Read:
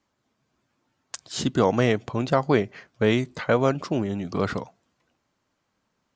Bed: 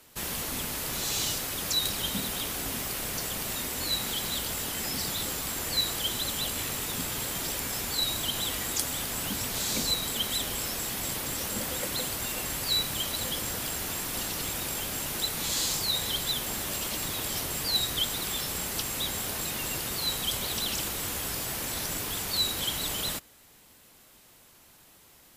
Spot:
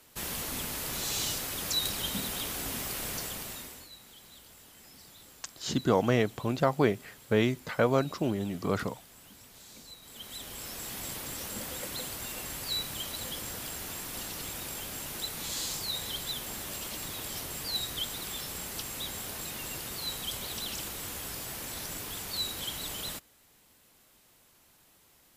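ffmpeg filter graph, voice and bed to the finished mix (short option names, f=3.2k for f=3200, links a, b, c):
-filter_complex "[0:a]adelay=4300,volume=-4.5dB[a];[1:a]volume=13dB,afade=t=out:st=3.11:d=0.78:silence=0.112202,afade=t=in:st=10.01:d=0.95:silence=0.16788[b];[a][b]amix=inputs=2:normalize=0"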